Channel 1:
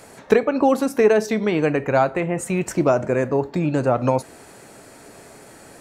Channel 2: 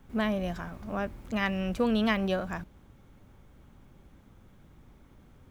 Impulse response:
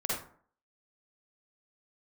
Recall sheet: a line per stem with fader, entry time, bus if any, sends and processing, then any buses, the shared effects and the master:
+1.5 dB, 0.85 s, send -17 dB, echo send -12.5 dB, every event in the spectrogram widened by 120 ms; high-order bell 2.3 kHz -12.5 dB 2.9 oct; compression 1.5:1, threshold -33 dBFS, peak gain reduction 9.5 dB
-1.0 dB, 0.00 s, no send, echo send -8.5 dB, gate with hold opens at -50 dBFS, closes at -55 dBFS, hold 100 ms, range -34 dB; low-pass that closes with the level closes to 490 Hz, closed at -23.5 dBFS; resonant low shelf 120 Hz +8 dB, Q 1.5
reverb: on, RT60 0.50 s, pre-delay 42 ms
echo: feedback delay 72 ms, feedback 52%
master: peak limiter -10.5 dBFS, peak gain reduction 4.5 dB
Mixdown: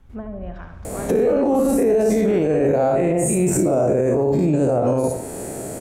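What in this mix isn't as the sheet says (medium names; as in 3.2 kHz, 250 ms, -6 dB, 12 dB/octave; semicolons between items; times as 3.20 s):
stem 1 +1.5 dB -> +10.0 dB; stem 2: missing gate with hold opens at -50 dBFS, closes at -55 dBFS, hold 100 ms, range -34 dB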